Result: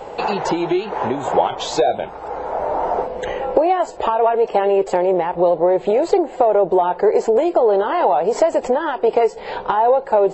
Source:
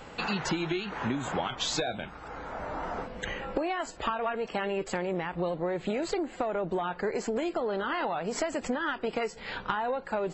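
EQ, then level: high-order bell 590 Hz +13.5 dB; +3.5 dB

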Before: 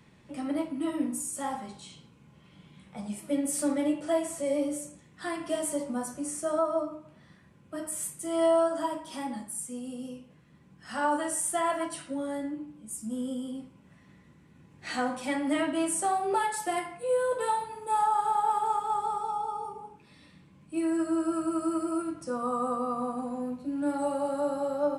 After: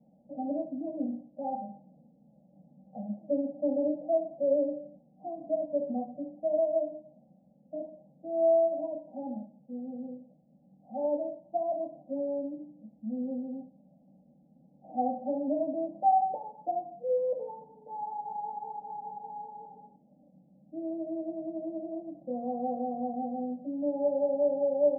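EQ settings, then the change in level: rippled Chebyshev low-pass 800 Hz, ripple 6 dB; tilt EQ +3.5 dB/octave; static phaser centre 390 Hz, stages 6; +8.0 dB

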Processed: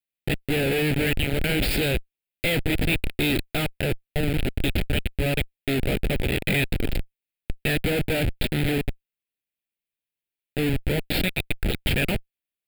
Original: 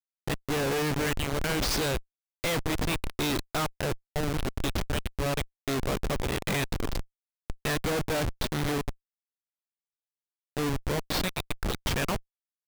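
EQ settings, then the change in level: peaking EQ 2.5 kHz +5 dB 0.22 oct; static phaser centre 2.6 kHz, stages 4; +6.5 dB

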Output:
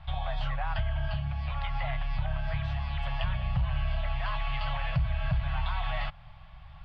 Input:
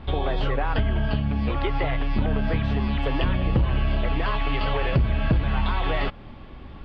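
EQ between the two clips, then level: elliptic band-stop 160–660 Hz, stop band 40 dB; -6.0 dB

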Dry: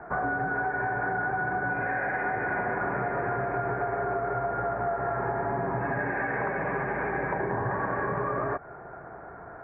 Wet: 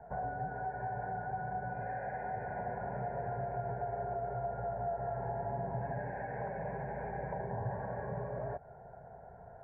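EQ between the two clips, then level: distance through air 190 m; peaking EQ 2.3 kHz -15 dB 1.9 oct; static phaser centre 1.2 kHz, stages 6; -2.5 dB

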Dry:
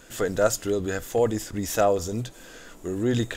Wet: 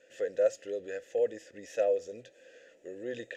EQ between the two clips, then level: vowel filter e; peaking EQ 6.3 kHz +8.5 dB 0.87 oct; 0.0 dB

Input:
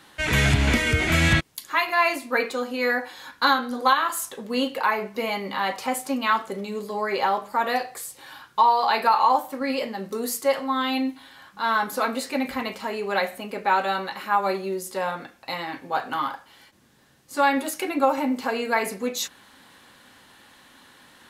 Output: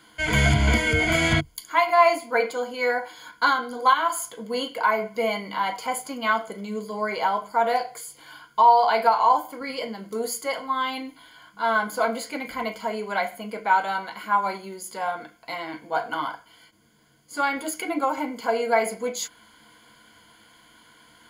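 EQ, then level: rippled EQ curve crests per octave 1.8, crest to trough 14 dB; dynamic bell 750 Hz, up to +6 dB, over -35 dBFS, Q 2; -4.0 dB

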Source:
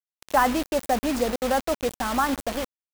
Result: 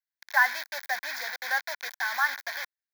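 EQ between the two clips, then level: resonant high-pass 1.5 kHz, resonance Q 3.3; static phaser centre 1.9 kHz, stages 8; 0.0 dB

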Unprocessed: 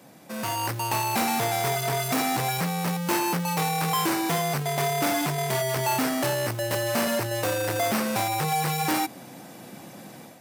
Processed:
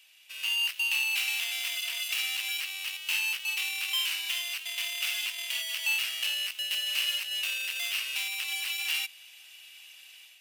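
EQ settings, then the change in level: resonant high-pass 2.8 kHz, resonance Q 7.9; -6.0 dB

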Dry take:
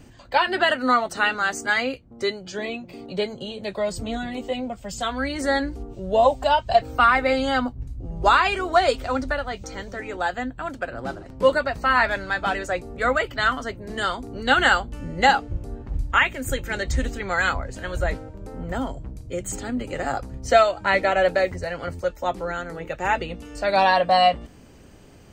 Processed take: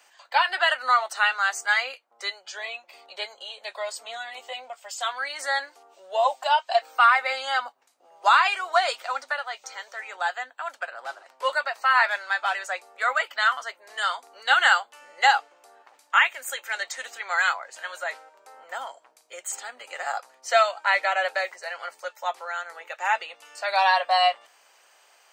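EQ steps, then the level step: high-pass 750 Hz 24 dB/octave; 0.0 dB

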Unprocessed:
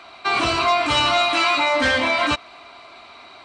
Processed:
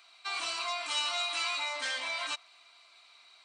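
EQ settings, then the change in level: dynamic bell 810 Hz, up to +5 dB, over -32 dBFS, Q 1; differentiator; -5.0 dB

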